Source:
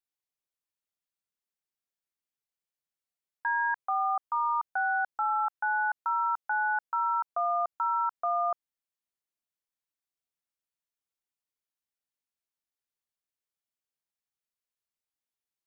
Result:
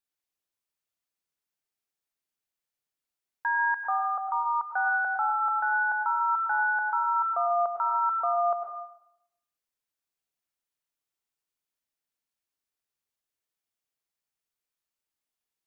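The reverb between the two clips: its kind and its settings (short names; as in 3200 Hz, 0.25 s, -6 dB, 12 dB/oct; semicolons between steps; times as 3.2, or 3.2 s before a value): plate-style reverb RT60 0.83 s, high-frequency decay 0.85×, pre-delay 85 ms, DRR 4 dB; gain +1.5 dB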